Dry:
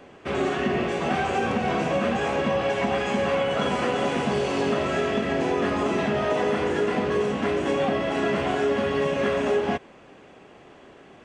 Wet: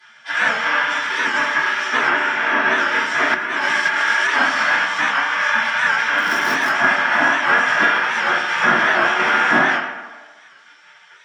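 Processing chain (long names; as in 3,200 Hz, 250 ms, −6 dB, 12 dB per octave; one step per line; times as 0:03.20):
asymmetric clip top −21.5 dBFS, bottom −15.5 dBFS
0:02.08–0:02.78: high-shelf EQ 3,900 Hz −8.5 dB
gate on every frequency bin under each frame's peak −20 dB weak
0:06.18–0:06.71: wrap-around overflow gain 30 dB
tape delay 71 ms, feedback 73%, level −6 dB, low-pass 3,500 Hz
convolution reverb RT60 0.40 s, pre-delay 3 ms, DRR −10.5 dB
0:03.34–0:04.29: compressor whose output falls as the input rises −22 dBFS, ratio −1
high-pass filter 150 Hz 12 dB per octave
parametric band 1,600 Hz +13 dB 0.24 octaves
wow of a warped record 78 rpm, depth 100 cents
level −1.5 dB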